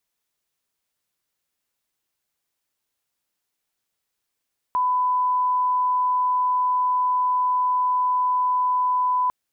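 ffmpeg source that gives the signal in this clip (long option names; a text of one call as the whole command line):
ffmpeg -f lavfi -i "sine=frequency=1000:duration=4.55:sample_rate=44100,volume=0.06dB" out.wav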